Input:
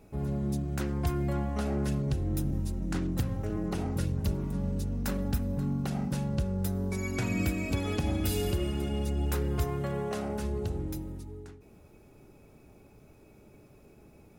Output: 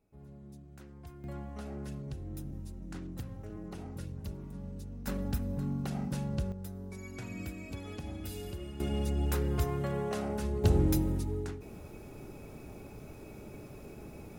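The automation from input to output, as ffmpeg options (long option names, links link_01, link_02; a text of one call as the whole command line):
ffmpeg -i in.wav -af "asetnsamples=nb_out_samples=441:pad=0,asendcmd='1.24 volume volume -11dB;5.07 volume volume -3.5dB;6.52 volume volume -11.5dB;8.8 volume volume -1dB;10.64 volume volume 8.5dB',volume=-19.5dB" out.wav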